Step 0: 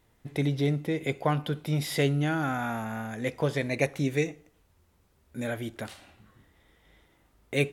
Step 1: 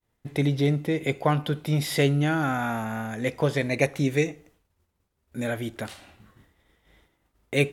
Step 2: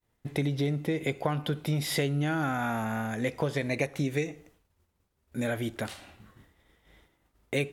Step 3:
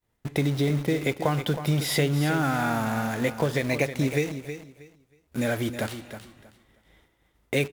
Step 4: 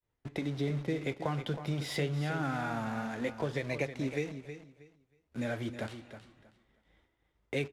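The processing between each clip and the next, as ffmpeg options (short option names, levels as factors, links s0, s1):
-af "agate=range=0.0224:threshold=0.00158:ratio=3:detection=peak,volume=1.5"
-af "acompressor=threshold=0.0562:ratio=6"
-filter_complex "[0:a]asplit=2[s0][s1];[s1]acrusher=bits=5:mix=0:aa=0.000001,volume=0.596[s2];[s0][s2]amix=inputs=2:normalize=0,aecho=1:1:318|636|954:0.299|0.0657|0.0144"
-filter_complex "[0:a]flanger=delay=1.7:depth=8.3:regen=-67:speed=0.27:shape=triangular,acrossover=split=170[s0][s1];[s1]adynamicsmooth=sensitivity=3.5:basefreq=6400[s2];[s0][s2]amix=inputs=2:normalize=0,volume=0.596"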